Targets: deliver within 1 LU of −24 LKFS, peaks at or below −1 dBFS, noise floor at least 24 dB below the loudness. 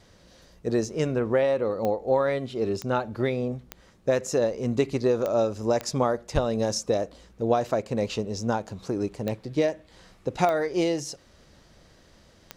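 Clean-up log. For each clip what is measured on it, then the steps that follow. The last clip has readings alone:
number of clicks 8; integrated loudness −26.5 LKFS; sample peak −9.5 dBFS; target loudness −24.0 LKFS
→ click removal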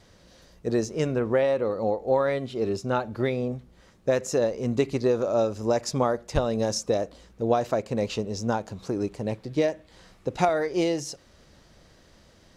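number of clicks 0; integrated loudness −26.5 LKFS; sample peak −9.5 dBFS; target loudness −24.0 LKFS
→ level +2.5 dB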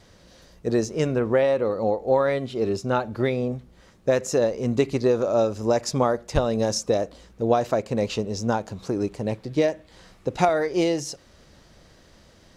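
integrated loudness −24.0 LKFS; sample peak −7.0 dBFS; background noise floor −54 dBFS

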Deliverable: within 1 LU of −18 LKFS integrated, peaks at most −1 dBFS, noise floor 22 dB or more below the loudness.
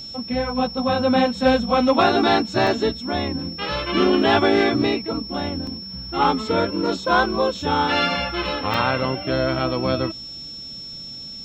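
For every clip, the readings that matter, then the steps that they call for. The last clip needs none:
number of dropouts 3; longest dropout 2.4 ms; interfering tone 5,400 Hz; level of the tone −33 dBFS; integrated loudness −20.5 LKFS; sample peak −5.5 dBFS; target loudness −18.0 LKFS
→ repair the gap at 0:02.67/0:05.67/0:08.74, 2.4 ms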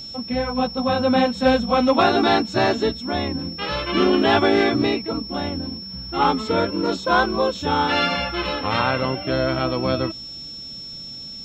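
number of dropouts 0; interfering tone 5,400 Hz; level of the tone −33 dBFS
→ notch filter 5,400 Hz, Q 30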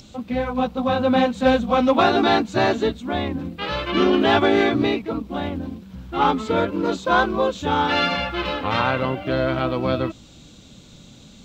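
interfering tone none found; integrated loudness −21.0 LKFS; sample peak −5.5 dBFS; target loudness −18.0 LKFS
→ level +3 dB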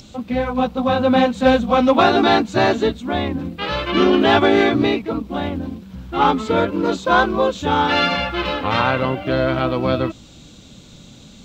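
integrated loudness −18.0 LKFS; sample peak −2.5 dBFS; background noise floor −44 dBFS

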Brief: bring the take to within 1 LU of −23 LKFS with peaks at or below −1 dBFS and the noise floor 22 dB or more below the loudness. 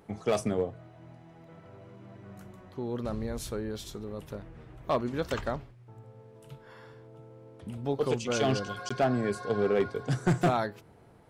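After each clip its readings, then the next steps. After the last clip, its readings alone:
share of clipped samples 0.4%; peaks flattened at −19.0 dBFS; number of dropouts 1; longest dropout 15 ms; integrated loudness −31.0 LKFS; sample peak −19.0 dBFS; target loudness −23.0 LKFS
→ clipped peaks rebuilt −19 dBFS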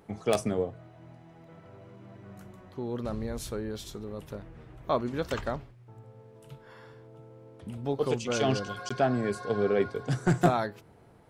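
share of clipped samples 0.0%; number of dropouts 1; longest dropout 15 ms
→ repair the gap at 0:08.89, 15 ms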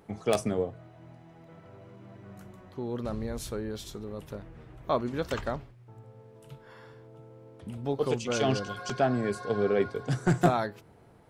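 number of dropouts 0; integrated loudness −30.5 LKFS; sample peak −10.0 dBFS; target loudness −23.0 LKFS
→ level +7.5 dB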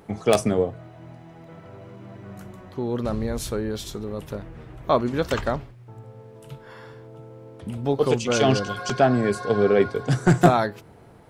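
integrated loudness −23.0 LKFS; sample peak −2.5 dBFS; background noise floor −47 dBFS

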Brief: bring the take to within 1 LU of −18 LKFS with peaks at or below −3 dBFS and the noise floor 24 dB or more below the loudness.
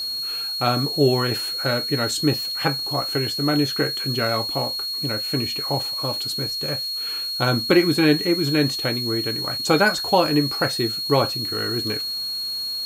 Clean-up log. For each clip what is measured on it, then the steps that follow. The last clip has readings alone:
interfering tone 4,300 Hz; level of the tone −25 dBFS; background noise floor −28 dBFS; target noise floor −46 dBFS; integrated loudness −21.5 LKFS; sample peak −3.5 dBFS; target loudness −18.0 LKFS
→ notch filter 4,300 Hz, Q 30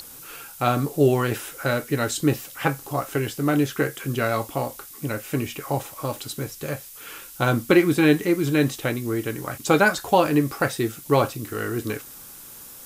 interfering tone none found; background noise floor −43 dBFS; target noise floor −48 dBFS
→ noise reduction from a noise print 6 dB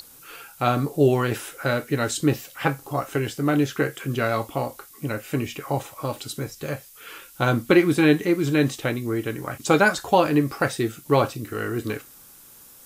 background noise floor −48 dBFS; integrated loudness −23.5 LKFS; sample peak −4.0 dBFS; target loudness −18.0 LKFS
→ level +5.5 dB
brickwall limiter −3 dBFS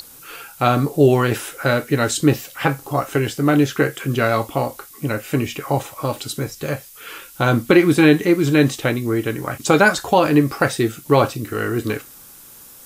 integrated loudness −18.5 LKFS; sample peak −3.0 dBFS; background noise floor −43 dBFS

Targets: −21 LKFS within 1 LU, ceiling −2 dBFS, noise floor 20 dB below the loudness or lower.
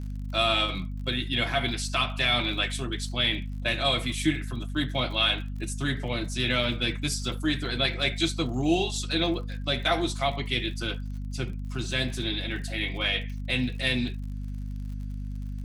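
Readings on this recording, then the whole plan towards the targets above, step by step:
crackle rate 53 per second; mains hum 50 Hz; hum harmonics up to 250 Hz; level of the hum −31 dBFS; integrated loudness −27.5 LKFS; sample peak −10.5 dBFS; target loudness −21.0 LKFS
→ click removal
mains-hum notches 50/100/150/200/250 Hz
level +6.5 dB

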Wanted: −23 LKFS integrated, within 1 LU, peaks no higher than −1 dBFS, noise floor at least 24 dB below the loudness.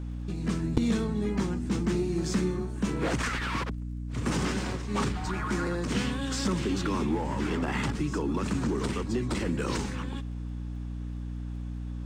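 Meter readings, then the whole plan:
crackle rate 25 per second; mains hum 60 Hz; hum harmonics up to 300 Hz; level of the hum −33 dBFS; integrated loudness −30.5 LKFS; sample peak −9.5 dBFS; target loudness −23.0 LKFS
→ click removal
hum removal 60 Hz, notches 5
level +7.5 dB

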